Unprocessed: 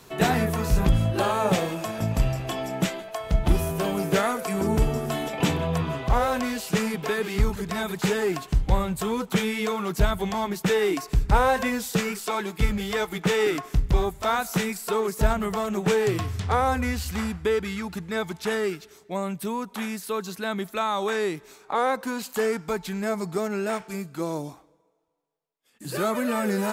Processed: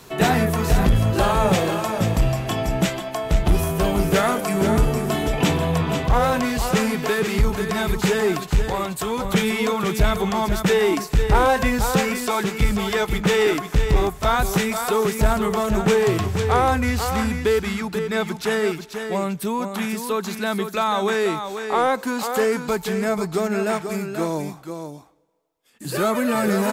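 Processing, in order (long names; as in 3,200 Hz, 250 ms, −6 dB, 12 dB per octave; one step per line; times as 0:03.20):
single-tap delay 488 ms −8 dB
soft clipping −12.5 dBFS, distortion −19 dB
0:08.68–0:09.25: high-pass filter 360 Hz 6 dB per octave
level +5 dB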